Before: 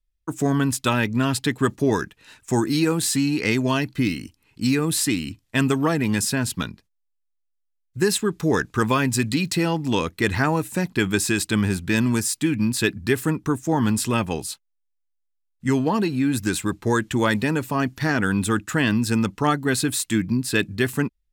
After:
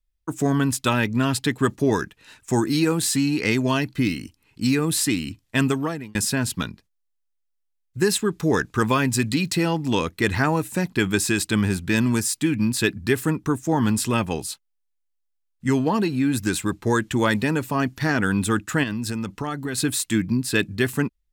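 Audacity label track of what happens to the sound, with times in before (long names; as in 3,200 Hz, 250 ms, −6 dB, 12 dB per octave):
5.640000	6.150000	fade out
18.830000	19.780000	downward compressor 10 to 1, threshold −23 dBFS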